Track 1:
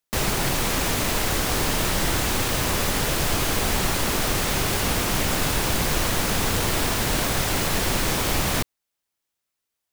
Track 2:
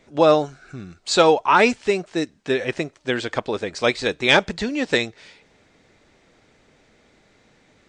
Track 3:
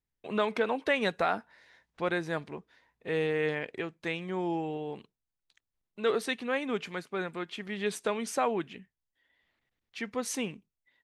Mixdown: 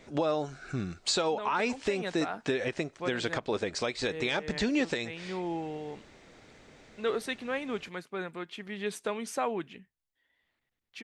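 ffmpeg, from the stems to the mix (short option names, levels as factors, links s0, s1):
-filter_complex "[1:a]volume=1.26[s0];[2:a]adelay=1000,volume=0.75[s1];[s0][s1]amix=inputs=2:normalize=0,acompressor=threshold=0.126:ratio=6,volume=1,alimiter=limit=0.119:level=0:latency=1:release=386"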